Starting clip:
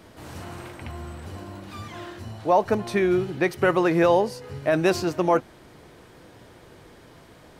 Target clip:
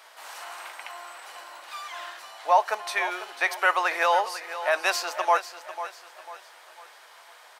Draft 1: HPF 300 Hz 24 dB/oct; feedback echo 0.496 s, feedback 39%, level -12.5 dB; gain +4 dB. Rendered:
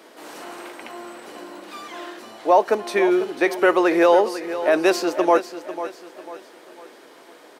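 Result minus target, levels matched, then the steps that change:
250 Hz band +19.5 dB
change: HPF 760 Hz 24 dB/oct

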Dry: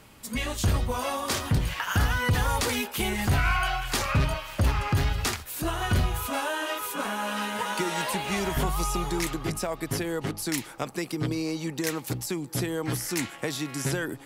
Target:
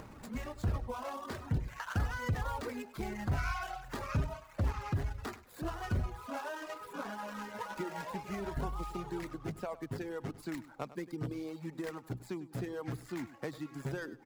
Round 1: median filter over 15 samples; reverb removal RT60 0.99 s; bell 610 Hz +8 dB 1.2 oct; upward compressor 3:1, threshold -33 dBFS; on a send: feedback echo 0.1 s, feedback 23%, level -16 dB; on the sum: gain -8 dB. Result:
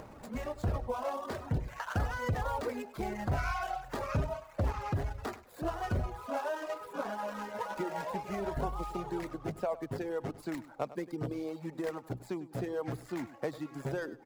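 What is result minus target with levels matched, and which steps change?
500 Hz band +3.5 dB
remove: bell 610 Hz +8 dB 1.2 oct

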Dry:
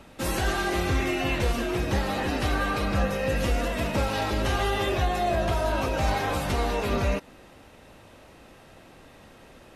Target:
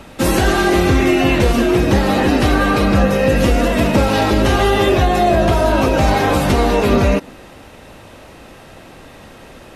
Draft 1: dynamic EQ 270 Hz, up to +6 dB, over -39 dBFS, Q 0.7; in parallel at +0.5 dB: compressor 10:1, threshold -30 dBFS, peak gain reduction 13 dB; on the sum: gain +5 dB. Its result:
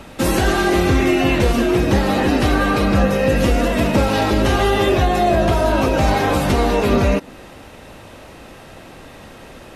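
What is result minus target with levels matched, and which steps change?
compressor: peak gain reduction +7 dB
change: compressor 10:1, threshold -22.5 dBFS, peak gain reduction 6 dB

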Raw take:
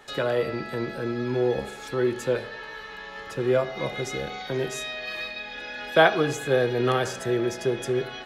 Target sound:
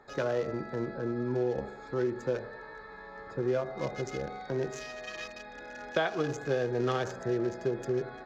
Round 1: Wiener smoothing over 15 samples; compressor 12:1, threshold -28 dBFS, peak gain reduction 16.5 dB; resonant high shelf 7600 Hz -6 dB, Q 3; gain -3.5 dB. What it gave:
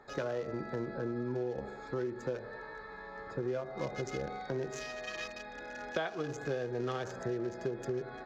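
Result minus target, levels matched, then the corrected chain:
compressor: peak gain reduction +6.5 dB
Wiener smoothing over 15 samples; compressor 12:1, threshold -21 dBFS, peak gain reduction 10 dB; resonant high shelf 7600 Hz -6 dB, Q 3; gain -3.5 dB

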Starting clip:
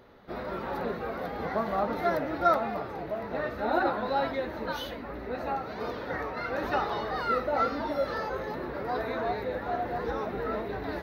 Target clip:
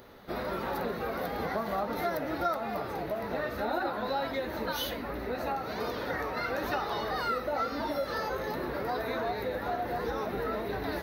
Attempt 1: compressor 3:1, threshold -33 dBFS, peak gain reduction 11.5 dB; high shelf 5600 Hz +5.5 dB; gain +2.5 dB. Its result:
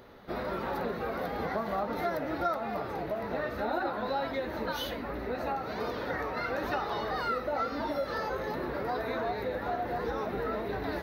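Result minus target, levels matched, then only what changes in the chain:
8000 Hz band -5.0 dB
change: high shelf 5600 Hz +14 dB

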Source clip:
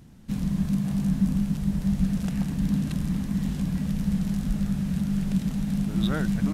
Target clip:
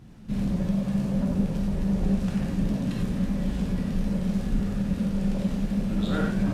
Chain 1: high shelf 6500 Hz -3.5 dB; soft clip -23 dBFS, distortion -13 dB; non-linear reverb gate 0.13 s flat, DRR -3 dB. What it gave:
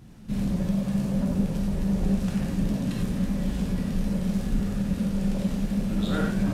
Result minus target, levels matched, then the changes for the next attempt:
8000 Hz band +4.0 dB
change: high shelf 6500 Hz -10.5 dB

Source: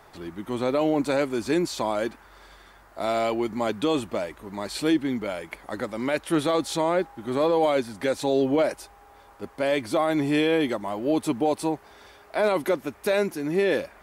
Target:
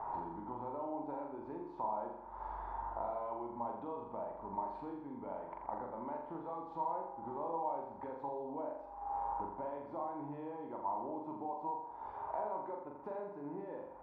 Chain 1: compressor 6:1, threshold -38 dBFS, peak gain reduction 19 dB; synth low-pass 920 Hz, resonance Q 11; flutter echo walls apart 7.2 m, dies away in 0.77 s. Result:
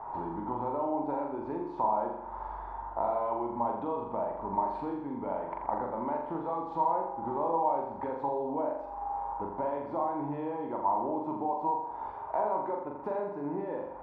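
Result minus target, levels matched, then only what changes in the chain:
compressor: peak gain reduction -9.5 dB
change: compressor 6:1, threshold -49.5 dBFS, peak gain reduction 28.5 dB

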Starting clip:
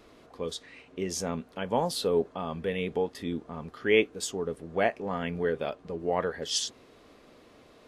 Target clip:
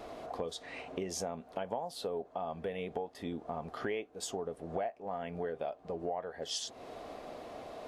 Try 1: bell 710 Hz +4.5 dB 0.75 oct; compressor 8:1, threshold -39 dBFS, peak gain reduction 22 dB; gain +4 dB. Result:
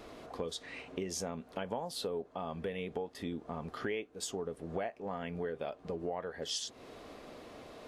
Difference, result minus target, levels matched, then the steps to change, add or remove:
1000 Hz band -3.0 dB
change: bell 710 Hz +14 dB 0.75 oct

